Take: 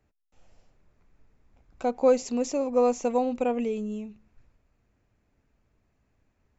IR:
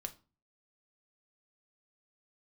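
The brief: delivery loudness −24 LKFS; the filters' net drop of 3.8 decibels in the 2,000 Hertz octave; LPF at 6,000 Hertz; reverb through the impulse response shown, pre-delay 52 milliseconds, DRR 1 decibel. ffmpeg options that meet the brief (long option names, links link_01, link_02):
-filter_complex "[0:a]lowpass=6000,equalizer=frequency=2000:width_type=o:gain=-5.5,asplit=2[link_01][link_02];[1:a]atrim=start_sample=2205,adelay=52[link_03];[link_02][link_03]afir=irnorm=-1:irlink=0,volume=1.5dB[link_04];[link_01][link_04]amix=inputs=2:normalize=0,volume=1dB"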